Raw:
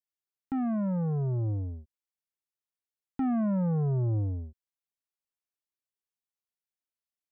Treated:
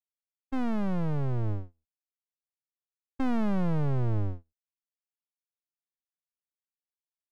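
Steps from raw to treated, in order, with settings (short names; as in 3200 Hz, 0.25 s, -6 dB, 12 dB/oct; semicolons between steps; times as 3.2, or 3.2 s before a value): gate -32 dBFS, range -37 dB; half-wave rectifier; gain +4.5 dB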